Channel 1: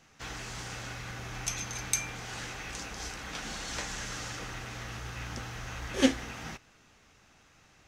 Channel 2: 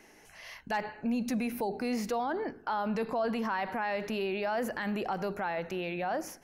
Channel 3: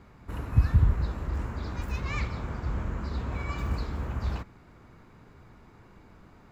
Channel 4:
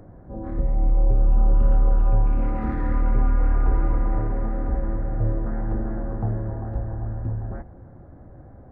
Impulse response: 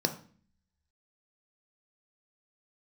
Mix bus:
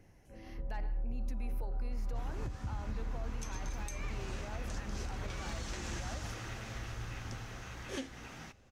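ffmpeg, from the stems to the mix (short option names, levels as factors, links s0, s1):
-filter_complex "[0:a]dynaudnorm=f=200:g=13:m=3.35,adelay=1950,volume=0.188[s0];[1:a]volume=0.211[s1];[2:a]acompressor=threshold=0.01:ratio=2,adelay=1900,volume=0.841[s2];[3:a]flanger=delay=0.2:depth=2.5:regen=74:speed=1:shape=triangular,volume=0.2[s3];[s0][s1][s2][s3]amix=inputs=4:normalize=0,alimiter=level_in=1.88:limit=0.0631:level=0:latency=1:release=252,volume=0.531"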